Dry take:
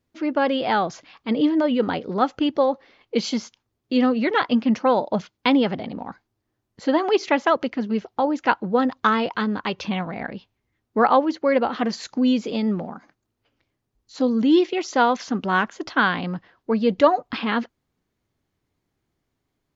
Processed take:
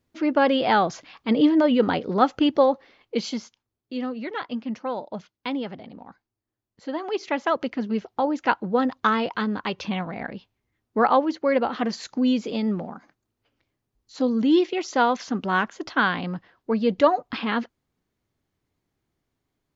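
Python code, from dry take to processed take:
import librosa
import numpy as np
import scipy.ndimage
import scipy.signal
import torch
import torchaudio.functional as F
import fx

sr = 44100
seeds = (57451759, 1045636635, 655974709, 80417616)

y = fx.gain(x, sr, db=fx.line((2.63, 1.5), (3.97, -10.5), (6.9, -10.5), (7.7, -2.0)))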